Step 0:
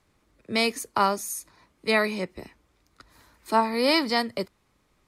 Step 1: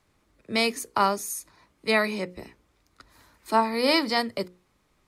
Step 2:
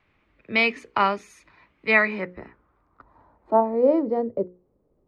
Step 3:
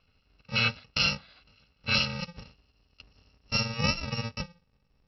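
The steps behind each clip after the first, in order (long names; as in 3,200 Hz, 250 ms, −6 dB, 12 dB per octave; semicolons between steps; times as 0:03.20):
mains-hum notches 60/120/180/240/300/360/420/480/540 Hz
low-pass filter sweep 2,500 Hz → 490 Hz, 0:01.77–0:04.01
samples in bit-reversed order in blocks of 128 samples; downsampling to 11,025 Hz; level +3 dB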